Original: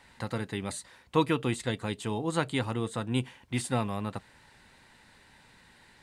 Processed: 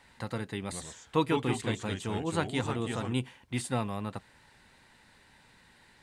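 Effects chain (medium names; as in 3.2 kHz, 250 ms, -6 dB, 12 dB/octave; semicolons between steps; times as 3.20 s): 0.62–3.13 s: ever faster or slower copies 95 ms, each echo -2 st, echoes 2, each echo -6 dB; trim -2 dB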